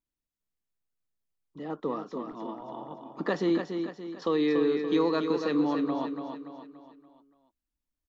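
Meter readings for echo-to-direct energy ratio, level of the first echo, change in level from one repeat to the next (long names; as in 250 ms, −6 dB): −5.5 dB, −6.5 dB, −7.0 dB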